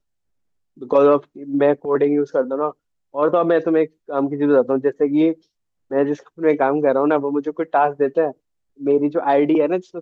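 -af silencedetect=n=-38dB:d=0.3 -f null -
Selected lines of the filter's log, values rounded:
silence_start: 0.00
silence_end: 0.77 | silence_duration: 0.77
silence_start: 2.72
silence_end: 3.14 | silence_duration: 0.43
silence_start: 5.34
silence_end: 5.91 | silence_duration: 0.57
silence_start: 8.32
silence_end: 8.80 | silence_duration: 0.48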